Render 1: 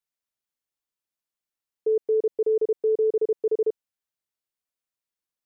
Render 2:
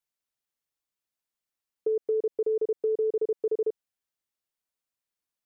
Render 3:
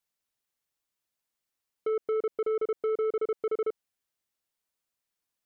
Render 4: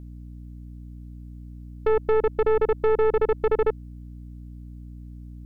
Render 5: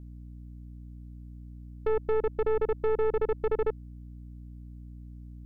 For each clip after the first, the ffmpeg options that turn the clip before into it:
ffmpeg -i in.wav -af "acompressor=threshold=-24dB:ratio=6" out.wav
ffmpeg -i in.wav -af "asoftclip=type=tanh:threshold=-28dB,volume=3dB" out.wav
ffmpeg -i in.wav -af "aeval=exprs='0.0562*(cos(1*acos(clip(val(0)/0.0562,-1,1)))-cos(1*PI/2))+0.0158*(cos(2*acos(clip(val(0)/0.0562,-1,1)))-cos(2*PI/2))':channel_layout=same,aeval=exprs='val(0)+0.00501*(sin(2*PI*60*n/s)+sin(2*PI*2*60*n/s)/2+sin(2*PI*3*60*n/s)/3+sin(2*PI*4*60*n/s)/4+sin(2*PI*5*60*n/s)/5)':channel_layout=same,volume=7.5dB" out.wav
ffmpeg -i in.wav -af "lowshelf=frequency=420:gain=4,volume=-8dB" out.wav

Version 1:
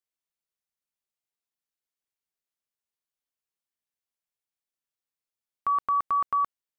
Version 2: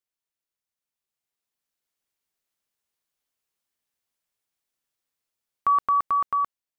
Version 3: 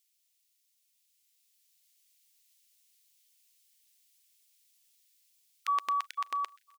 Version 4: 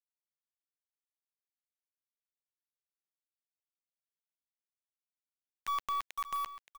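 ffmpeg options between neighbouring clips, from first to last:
ffmpeg -i in.wav -af "dynaudnorm=framelen=330:gausssize=9:maxgain=7.5dB" out.wav
ffmpeg -i in.wav -af "aexciter=amount=7.9:drive=6.9:freq=2000,aecho=1:1:129|258|387|516:0.0708|0.0418|0.0246|0.0145,afftfilt=real='re*gte(b*sr/1024,210*pow(1500/210,0.5+0.5*sin(2*PI*2*pts/sr)))':imag='im*gte(b*sr/1024,210*pow(1500/210,0.5+0.5*sin(2*PI*2*pts/sr)))':win_size=1024:overlap=0.75,volume=-7.5dB" out.wav
ffmpeg -i in.wav -af "acrusher=bits=6:mix=0:aa=0.000001,aeval=exprs='(tanh(31.6*val(0)+0.2)-tanh(0.2))/31.6':channel_layout=same,aecho=1:1:573:0.2" out.wav

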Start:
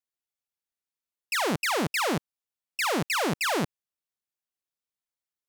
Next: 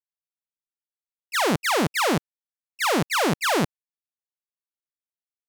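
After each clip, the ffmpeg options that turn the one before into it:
ffmpeg -i in.wav -af "agate=range=-22dB:threshold=-27dB:ratio=16:detection=peak,volume=5.5dB" out.wav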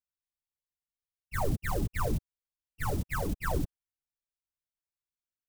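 ffmpeg -i in.wav -af "aeval=exprs='abs(val(0))':channel_layout=same,afftfilt=real='hypot(re,im)*cos(2*PI*random(0))':imag='hypot(re,im)*sin(2*PI*random(1))':win_size=512:overlap=0.75" out.wav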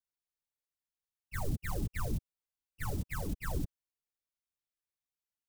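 ffmpeg -i in.wav -filter_complex "[0:a]acrossover=split=300|3000[link_01][link_02][link_03];[link_02]acompressor=threshold=-38dB:ratio=6[link_04];[link_01][link_04][link_03]amix=inputs=3:normalize=0,volume=-3.5dB" out.wav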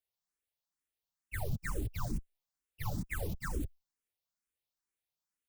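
ffmpeg -i in.wav -filter_complex "[0:a]alimiter=level_in=3.5dB:limit=-24dB:level=0:latency=1:release=90,volume=-3.5dB,asplit=2[link_01][link_02];[link_02]afreqshift=2.2[link_03];[link_01][link_03]amix=inputs=2:normalize=1,volume=4dB" out.wav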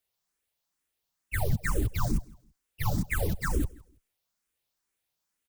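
ffmpeg -i in.wav -af "aecho=1:1:164|328:0.0668|0.0167,volume=8.5dB" out.wav

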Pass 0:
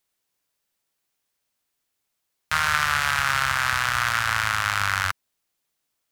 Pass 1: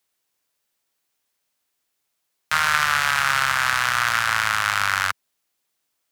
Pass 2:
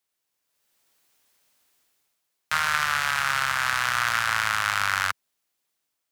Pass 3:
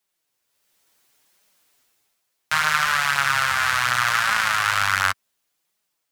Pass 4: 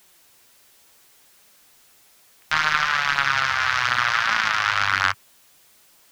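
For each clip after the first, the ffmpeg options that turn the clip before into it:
ffmpeg -i in.wav -filter_complex "[0:a]lowshelf=frequency=160:gain=-6.5,acrossover=split=110|4000[link_01][link_02][link_03];[link_01]alimiter=level_in=23dB:limit=-24dB:level=0:latency=1,volume=-23dB[link_04];[link_04][link_02][link_03]amix=inputs=3:normalize=0,volume=2.5dB" out.wav
ffmpeg -i in.wav -af "dynaudnorm=framelen=440:gausssize=3:maxgain=15dB,volume=-6.5dB" out.wav
ffmpeg -i in.wav -af "flanger=delay=4.6:depth=6.1:regen=7:speed=0.69:shape=triangular,volume=7dB" out.wav
ffmpeg -i in.wav -af "aeval=exprs='val(0)+0.5*0.0447*sgn(val(0))':channel_layout=same,aeval=exprs='0.708*(cos(1*acos(clip(val(0)/0.708,-1,1)))-cos(1*PI/2))+0.0631*(cos(2*acos(clip(val(0)/0.708,-1,1)))-cos(2*PI/2))+0.0501*(cos(7*acos(clip(val(0)/0.708,-1,1)))-cos(7*PI/2))':channel_layout=same,afwtdn=0.0224" out.wav

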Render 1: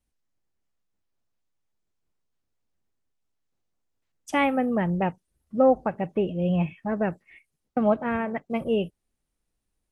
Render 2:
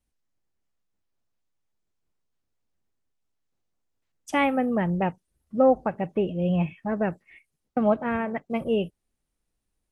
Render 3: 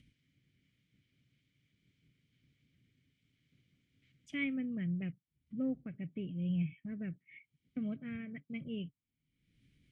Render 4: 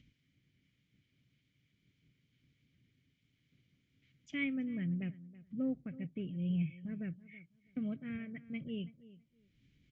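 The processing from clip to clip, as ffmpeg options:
ffmpeg -i in.wav -af anull out.wav
ffmpeg -i in.wav -filter_complex "[0:a]acompressor=mode=upward:threshold=-28dB:ratio=2.5,asplit=3[link_01][link_02][link_03];[link_01]bandpass=frequency=270:width_type=q:width=8,volume=0dB[link_04];[link_02]bandpass=frequency=2290:width_type=q:width=8,volume=-6dB[link_05];[link_03]bandpass=frequency=3010:width_type=q:width=8,volume=-9dB[link_06];[link_04][link_05][link_06]amix=inputs=3:normalize=0,lowshelf=frequency=190:width_type=q:width=3:gain=11.5,volume=-1.5dB" out.wav
ffmpeg -i in.wav -filter_complex "[0:a]asplit=2[link_01][link_02];[link_02]adelay=327,lowpass=frequency=2000:poles=1,volume=-17.5dB,asplit=2[link_03][link_04];[link_04]adelay=327,lowpass=frequency=2000:poles=1,volume=0.2[link_05];[link_01][link_03][link_05]amix=inputs=3:normalize=0,aresample=16000,aresample=44100" out.wav

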